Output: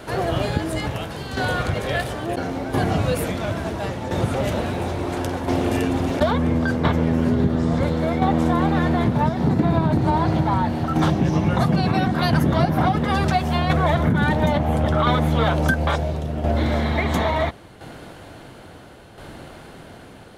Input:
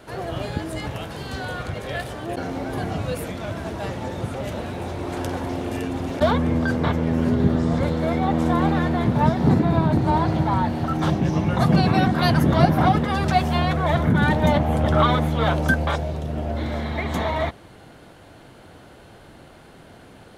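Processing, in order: tremolo saw down 0.73 Hz, depth 60%; compression, threshold -23 dBFS, peak gain reduction 11 dB; trim +8 dB

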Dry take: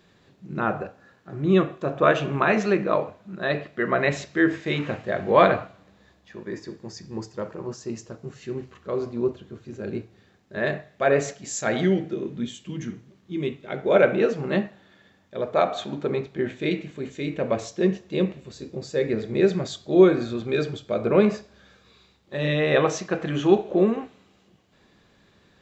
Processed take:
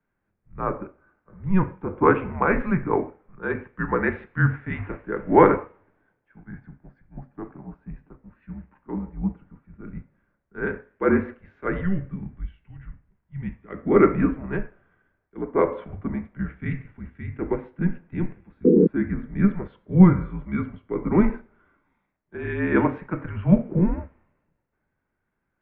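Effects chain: painted sound noise, 18.64–18.87 s, 350–700 Hz -16 dBFS; mistuned SSB -190 Hz 220–2300 Hz; three bands expanded up and down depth 40%; trim -1 dB

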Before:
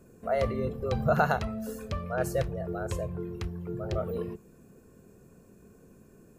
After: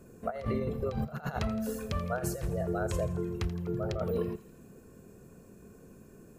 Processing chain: compressor with a negative ratio -31 dBFS, ratio -0.5; on a send: thinning echo 83 ms, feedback 66%, high-pass 1.2 kHz, level -14 dB

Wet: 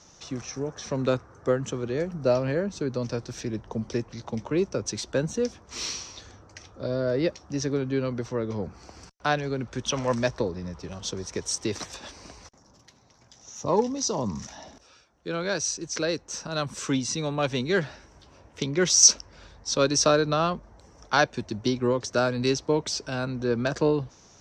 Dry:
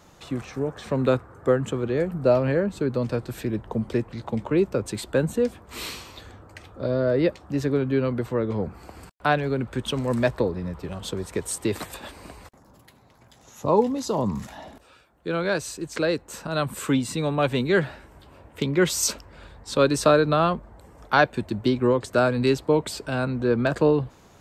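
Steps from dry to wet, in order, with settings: Chebyshev shaper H 7 -37 dB, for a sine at -4 dBFS; resonant low-pass 5.8 kHz, resonance Q 9.3; time-frequency box 9.91–10.14 s, 500–3600 Hz +8 dB; trim -3.5 dB

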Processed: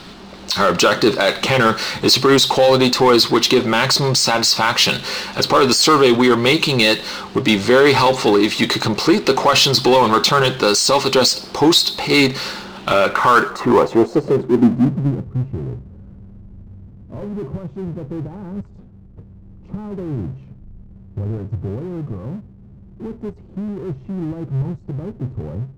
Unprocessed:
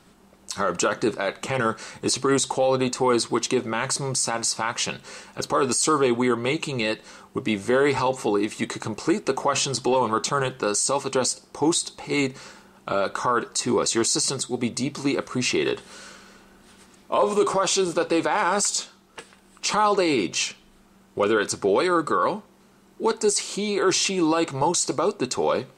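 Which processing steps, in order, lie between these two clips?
low-pass sweep 4.2 kHz -> 100 Hz, 12.73–15.38 s; level rider gain up to 3.5 dB; power-law waveshaper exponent 0.7; trim +2 dB

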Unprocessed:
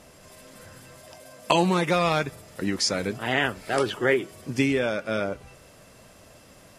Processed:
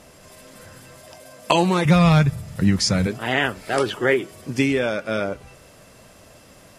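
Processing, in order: 1.85–3.07 s: resonant low shelf 220 Hz +12.5 dB, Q 1.5; trim +3 dB

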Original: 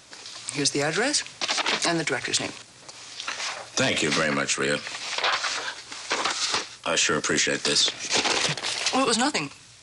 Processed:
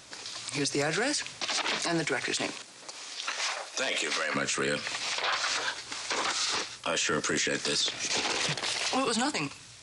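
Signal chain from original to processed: peak limiter -19.5 dBFS, peak gain reduction 10 dB; 2.08–4.34 s: high-pass 140 Hz -> 590 Hz 12 dB/octave

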